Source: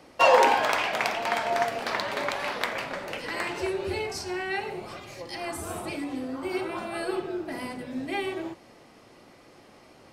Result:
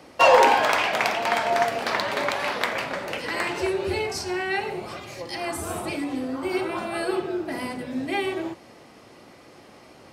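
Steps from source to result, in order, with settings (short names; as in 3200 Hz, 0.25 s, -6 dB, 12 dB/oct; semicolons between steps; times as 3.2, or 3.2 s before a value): HPF 47 Hz; in parallel at -4 dB: soft clip -16 dBFS, distortion -13 dB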